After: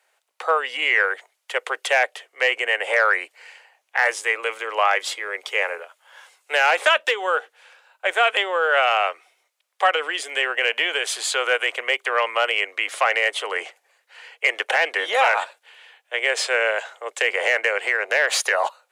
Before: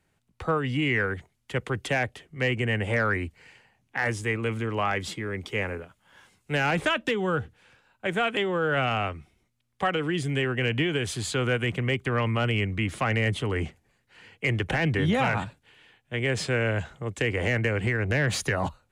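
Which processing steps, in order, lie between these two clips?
steep high-pass 510 Hz 36 dB/octave; trim +8.5 dB

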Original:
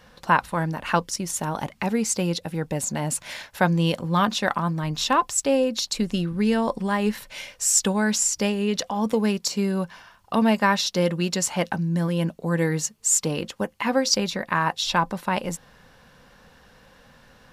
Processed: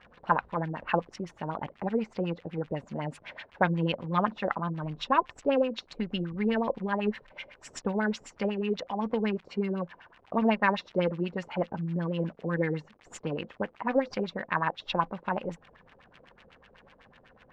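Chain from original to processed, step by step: Chebyshev shaper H 4 -30 dB, 7 -31 dB, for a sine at -4 dBFS; crackle 260 per s -34 dBFS; LFO low-pass sine 8 Hz 410–3000 Hz; trim -6.5 dB

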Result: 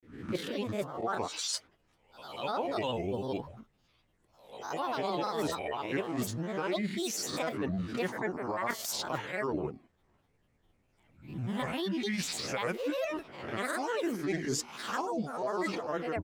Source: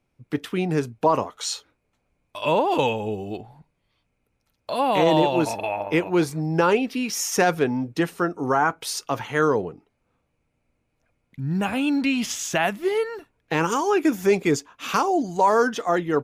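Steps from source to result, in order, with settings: reverse spectral sustain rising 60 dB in 0.50 s; reverse; compression 6:1, threshold -30 dBFS, peak gain reduction 16.5 dB; reverse; granulator, spray 27 ms, pitch spread up and down by 7 st

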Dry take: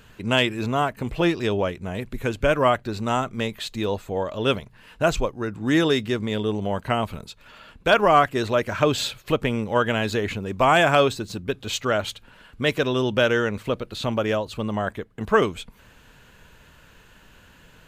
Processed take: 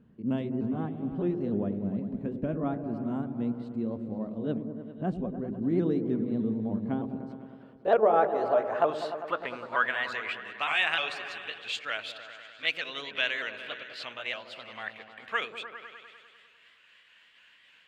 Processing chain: sawtooth pitch modulation +2.5 st, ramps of 305 ms; band-pass sweep 220 Hz -> 2.5 kHz, 6.71–10.52 s; delay with an opening low-pass 100 ms, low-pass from 400 Hz, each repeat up 1 oct, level -6 dB; trim +1.5 dB

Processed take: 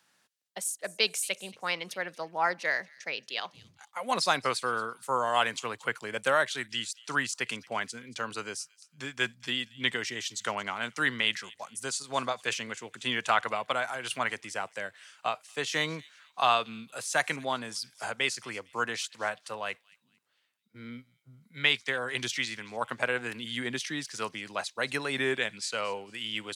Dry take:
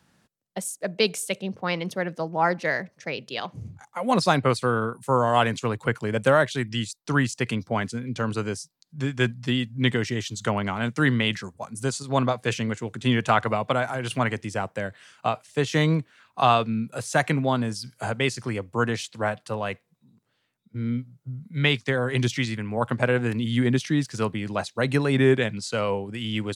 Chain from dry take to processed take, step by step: high-pass 1.4 kHz 6 dB/octave; on a send: feedback echo behind a high-pass 227 ms, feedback 31%, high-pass 2.9 kHz, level -19 dB

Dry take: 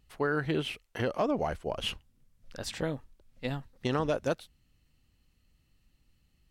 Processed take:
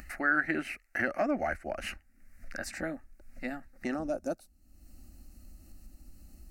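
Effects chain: peaking EQ 1.9 kHz +11 dB 1.1 oct, from 2.64 s +4 dB, from 3.94 s -13.5 dB; upward compressor, threshold -31 dBFS; static phaser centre 670 Hz, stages 8

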